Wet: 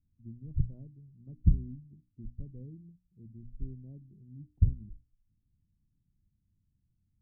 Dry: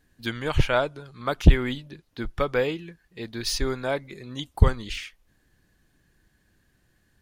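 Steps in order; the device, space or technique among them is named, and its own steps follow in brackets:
the neighbour's flat through the wall (low-pass filter 220 Hz 24 dB per octave; parametric band 99 Hz +5 dB 0.81 octaves)
mains-hum notches 60/120/180/240/300 Hz
level −9 dB

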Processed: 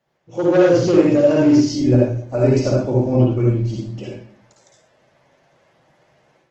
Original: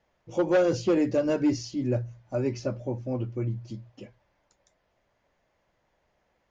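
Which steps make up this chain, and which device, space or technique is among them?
far-field microphone of a smart speaker (convolution reverb RT60 0.55 s, pre-delay 50 ms, DRR −3 dB; high-pass filter 100 Hz 24 dB per octave; automatic gain control gain up to 10 dB; Opus 16 kbit/s 48,000 Hz)

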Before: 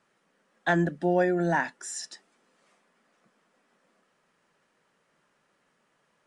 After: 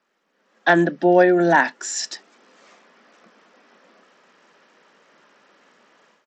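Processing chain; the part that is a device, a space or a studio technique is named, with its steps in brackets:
Bluetooth headset (high-pass filter 210 Hz 24 dB per octave; automatic gain control gain up to 16 dB; downsampling to 16,000 Hz; level −1 dB; SBC 64 kbit/s 32,000 Hz)

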